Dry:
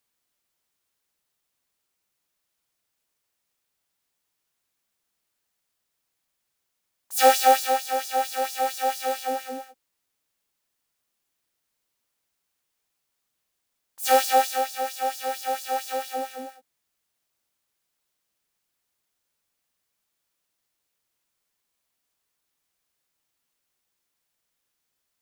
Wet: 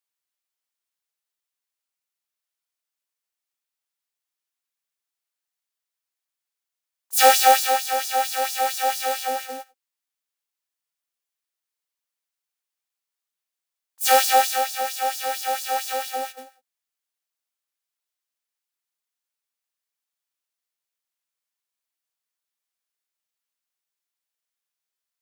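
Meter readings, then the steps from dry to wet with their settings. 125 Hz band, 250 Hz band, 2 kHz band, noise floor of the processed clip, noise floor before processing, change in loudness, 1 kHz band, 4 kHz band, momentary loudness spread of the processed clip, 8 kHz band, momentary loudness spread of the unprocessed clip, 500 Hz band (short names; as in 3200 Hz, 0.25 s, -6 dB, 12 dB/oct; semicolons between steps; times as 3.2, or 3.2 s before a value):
n/a, -5.0 dB, +5.0 dB, under -85 dBFS, -79 dBFS, +3.5 dB, +2.5 dB, +5.5 dB, 14 LU, +6.0 dB, 13 LU, 0.0 dB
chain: HPF 890 Hz 6 dB/oct; gate -39 dBFS, range -14 dB; gain +6 dB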